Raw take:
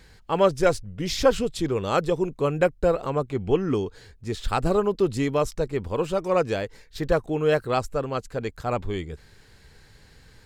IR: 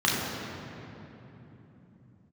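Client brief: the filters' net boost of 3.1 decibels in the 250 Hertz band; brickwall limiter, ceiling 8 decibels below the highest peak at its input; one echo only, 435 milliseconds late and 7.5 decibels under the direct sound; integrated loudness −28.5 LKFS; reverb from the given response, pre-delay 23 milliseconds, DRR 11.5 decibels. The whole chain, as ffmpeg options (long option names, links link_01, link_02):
-filter_complex "[0:a]equalizer=frequency=250:width_type=o:gain=4.5,alimiter=limit=-13dB:level=0:latency=1,aecho=1:1:435:0.422,asplit=2[link_01][link_02];[1:a]atrim=start_sample=2205,adelay=23[link_03];[link_02][link_03]afir=irnorm=-1:irlink=0,volume=-27dB[link_04];[link_01][link_04]amix=inputs=2:normalize=0,volume=-4dB"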